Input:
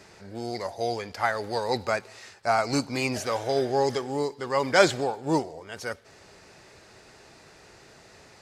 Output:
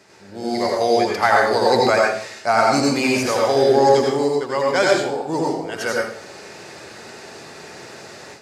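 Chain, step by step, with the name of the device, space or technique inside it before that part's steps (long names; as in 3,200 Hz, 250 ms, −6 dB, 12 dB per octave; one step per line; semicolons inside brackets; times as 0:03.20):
far laptop microphone (convolution reverb RT60 0.55 s, pre-delay 78 ms, DRR −2 dB; high-pass filter 140 Hz 12 dB per octave; automatic gain control gain up to 11 dB)
level −1 dB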